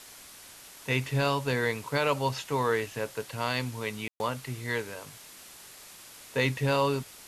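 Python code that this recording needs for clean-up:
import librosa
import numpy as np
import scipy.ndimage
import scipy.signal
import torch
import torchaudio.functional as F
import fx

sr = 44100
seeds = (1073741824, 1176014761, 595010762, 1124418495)

y = fx.fix_ambience(x, sr, seeds[0], print_start_s=0.27, print_end_s=0.77, start_s=4.08, end_s=4.2)
y = fx.noise_reduce(y, sr, print_start_s=0.27, print_end_s=0.77, reduce_db=26.0)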